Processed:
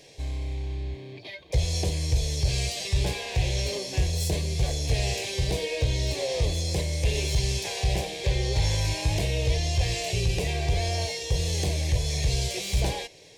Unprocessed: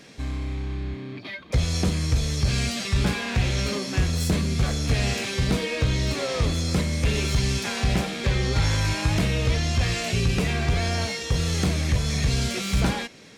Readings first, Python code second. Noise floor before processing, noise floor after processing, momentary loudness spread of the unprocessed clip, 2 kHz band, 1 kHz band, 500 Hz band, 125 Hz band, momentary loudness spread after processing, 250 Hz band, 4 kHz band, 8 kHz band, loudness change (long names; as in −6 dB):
−38 dBFS, −43 dBFS, 5 LU, −5.5 dB, −4.0 dB, −1.0 dB, −3.0 dB, 5 LU, −9.5 dB, −1.5 dB, −0.5 dB, −2.5 dB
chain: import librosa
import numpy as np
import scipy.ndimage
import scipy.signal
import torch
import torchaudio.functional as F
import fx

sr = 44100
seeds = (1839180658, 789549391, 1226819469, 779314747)

y = fx.fixed_phaser(x, sr, hz=550.0, stages=4)